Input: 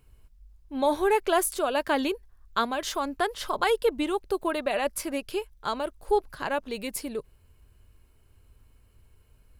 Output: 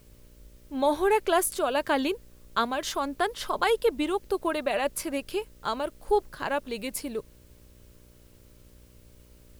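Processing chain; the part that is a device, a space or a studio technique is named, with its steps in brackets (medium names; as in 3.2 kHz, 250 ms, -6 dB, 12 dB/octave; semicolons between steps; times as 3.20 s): video cassette with head-switching buzz (mains buzz 60 Hz, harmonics 10, -57 dBFS -4 dB/octave; white noise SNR 34 dB)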